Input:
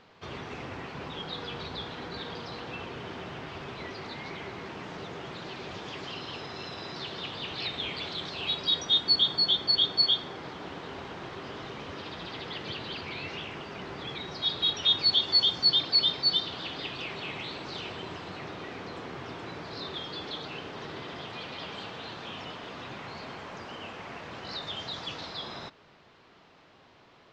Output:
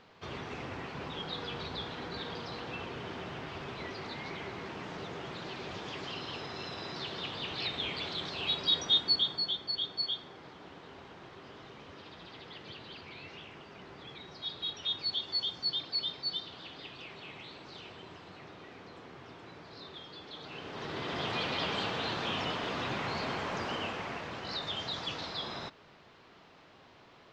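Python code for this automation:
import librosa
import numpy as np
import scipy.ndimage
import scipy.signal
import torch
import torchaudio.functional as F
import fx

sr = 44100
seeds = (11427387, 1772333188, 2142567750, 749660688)

y = fx.gain(x, sr, db=fx.line((8.89, -1.5), (9.62, -10.0), (20.28, -10.0), (20.81, -0.5), (21.28, 6.0), (23.71, 6.0), (24.39, 0.0)))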